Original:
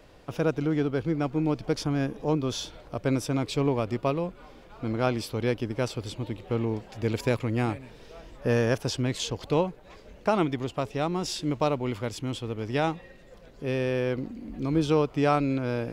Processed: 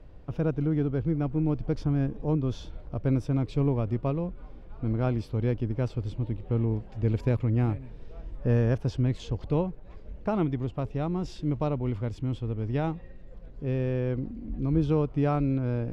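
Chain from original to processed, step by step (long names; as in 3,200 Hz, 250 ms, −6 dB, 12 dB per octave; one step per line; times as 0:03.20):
RIAA equalisation playback
level −7 dB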